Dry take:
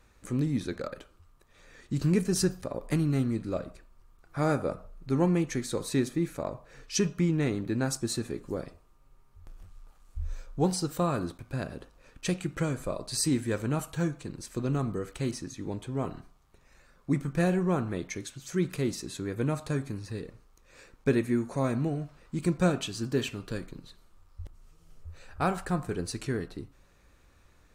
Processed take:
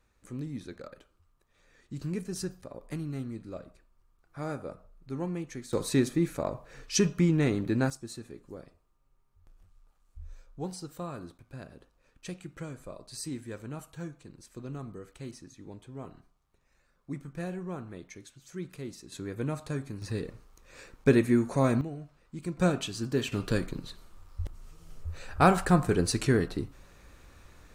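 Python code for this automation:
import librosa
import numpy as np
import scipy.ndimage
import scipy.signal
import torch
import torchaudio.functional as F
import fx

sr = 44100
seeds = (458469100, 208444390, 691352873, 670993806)

y = fx.gain(x, sr, db=fx.steps((0.0, -9.0), (5.73, 2.0), (7.9, -10.5), (19.12, -3.5), (20.02, 3.5), (21.81, -8.0), (22.57, -0.5), (23.32, 7.0)))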